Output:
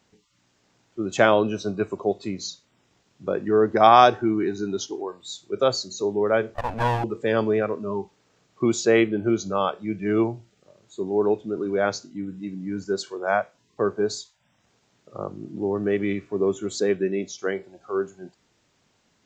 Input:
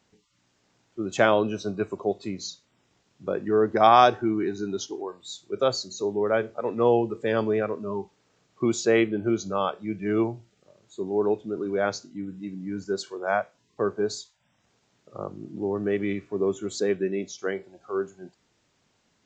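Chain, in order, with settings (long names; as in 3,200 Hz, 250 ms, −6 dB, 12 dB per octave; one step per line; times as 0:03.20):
0:06.54–0:07.04: lower of the sound and its delayed copy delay 1.2 ms
level +2.5 dB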